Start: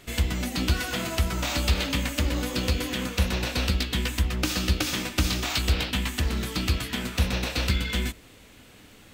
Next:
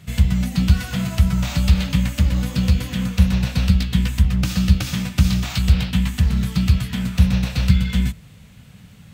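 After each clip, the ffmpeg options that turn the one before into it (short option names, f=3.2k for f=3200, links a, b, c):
-af "highpass=51,lowshelf=f=230:t=q:w=3:g=10.5,volume=-1dB"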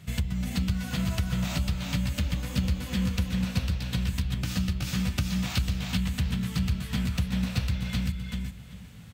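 -af "acompressor=threshold=-21dB:ratio=6,aecho=1:1:390|780|1170:0.668|0.107|0.0171,volume=-4dB"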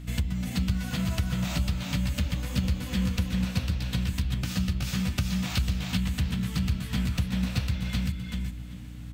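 -af "aeval=exprs='val(0)+0.0112*(sin(2*PI*60*n/s)+sin(2*PI*2*60*n/s)/2+sin(2*PI*3*60*n/s)/3+sin(2*PI*4*60*n/s)/4+sin(2*PI*5*60*n/s)/5)':c=same"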